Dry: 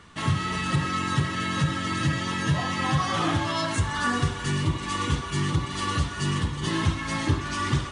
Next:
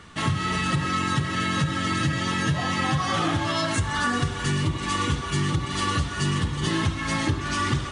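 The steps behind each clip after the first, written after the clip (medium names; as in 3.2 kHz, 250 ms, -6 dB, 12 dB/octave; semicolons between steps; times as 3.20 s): band-stop 1 kHz, Q 13; compression, threshold -24 dBFS, peak gain reduction 7 dB; trim +4 dB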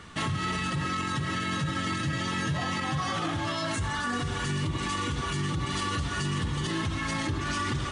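peak limiter -21.5 dBFS, peak gain reduction 10 dB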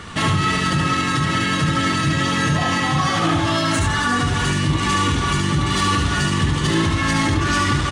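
in parallel at -4 dB: saturation -31.5 dBFS, distortion -11 dB; on the sum: delay 73 ms -3.5 dB; trim +7 dB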